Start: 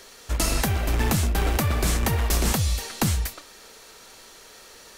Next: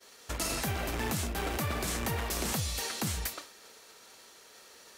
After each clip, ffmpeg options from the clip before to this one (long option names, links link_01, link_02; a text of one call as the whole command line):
ffmpeg -i in.wav -af "alimiter=limit=-20.5dB:level=0:latency=1:release=74,highpass=frequency=170:poles=1,agate=range=-33dB:threshold=-41dB:ratio=3:detection=peak" out.wav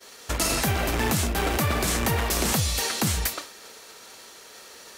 ffmpeg -i in.wav -af "acontrast=27,volume=3.5dB" out.wav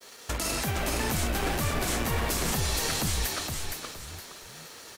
ffmpeg -i in.wav -filter_complex "[0:a]alimiter=limit=-19.5dB:level=0:latency=1:release=176,aeval=exprs='sgn(val(0))*max(abs(val(0))-0.00126,0)':channel_layout=same,asplit=2[link_01][link_02];[link_02]asplit=4[link_03][link_04][link_05][link_06];[link_03]adelay=466,afreqshift=-72,volume=-4dB[link_07];[link_04]adelay=932,afreqshift=-144,volume=-13.6dB[link_08];[link_05]adelay=1398,afreqshift=-216,volume=-23.3dB[link_09];[link_06]adelay=1864,afreqshift=-288,volume=-32.9dB[link_10];[link_07][link_08][link_09][link_10]amix=inputs=4:normalize=0[link_11];[link_01][link_11]amix=inputs=2:normalize=0" out.wav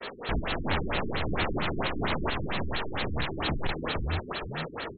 ffmpeg -i in.wav -af "aeval=exprs='(tanh(17.8*val(0)+0.4)-tanh(0.4))/17.8':channel_layout=same,aeval=exprs='0.0794*sin(PI/2*4.47*val(0)/0.0794)':channel_layout=same,afftfilt=real='re*lt(b*sr/1024,380*pow(4400/380,0.5+0.5*sin(2*PI*4.4*pts/sr)))':imag='im*lt(b*sr/1024,380*pow(4400/380,0.5+0.5*sin(2*PI*4.4*pts/sr)))':win_size=1024:overlap=0.75" out.wav